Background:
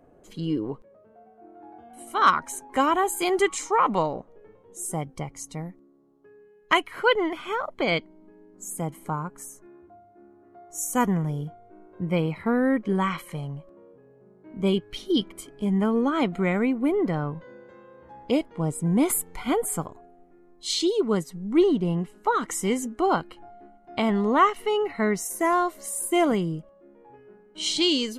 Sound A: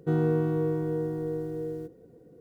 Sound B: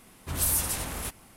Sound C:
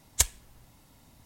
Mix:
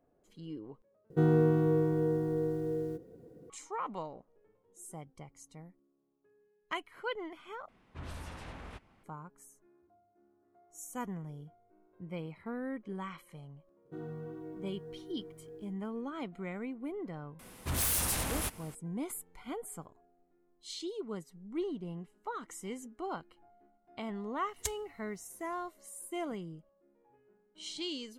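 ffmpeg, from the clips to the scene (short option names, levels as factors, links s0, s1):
-filter_complex "[1:a]asplit=2[s0][s1];[2:a]asplit=2[s2][s3];[0:a]volume=0.15[s4];[s2]lowpass=2700[s5];[s1]flanger=delay=15.5:depth=2.2:speed=1.6[s6];[s3]aeval=exprs='0.224*sin(PI/2*3.55*val(0)/0.224)':c=same[s7];[s4]asplit=3[s8][s9][s10];[s8]atrim=end=1.104[s11];[s0]atrim=end=2.4,asetpts=PTS-STARTPTS,volume=0.944[s12];[s9]atrim=start=3.496:end=7.684[s13];[s5]atrim=end=1.36,asetpts=PTS-STARTPTS,volume=0.316[s14];[s10]atrim=start=9.036[s15];[s6]atrim=end=2.4,asetpts=PTS-STARTPTS,volume=0.211,afade=t=in:d=0.004:c=hsin,afade=t=out:st=2.396:d=0.004:c=hsin,adelay=13850[s16];[s7]atrim=end=1.36,asetpts=PTS-STARTPTS,volume=0.2,afade=t=in:d=0.004:c=hsin,afade=t=out:st=1.356:d=0.004:c=hsin,adelay=17390[s17];[3:a]atrim=end=1.25,asetpts=PTS-STARTPTS,volume=0.211,afade=t=in:d=0.004:c=hsin,afade=t=out:st=1.246:d=0.004:c=hsin,adelay=24450[s18];[s11][s12]acrossfade=d=0.004:c1=hsin:c2=hsin[s19];[s19][s13]acrossfade=d=0.004:c1=hsin:c2=hsin[s20];[s20][s14]acrossfade=d=0.004:c1=hsin:c2=hsin[s21];[s21][s15]acrossfade=d=0.004:c1=hsin:c2=hsin[s22];[s22][s16][s17][s18]amix=inputs=4:normalize=0"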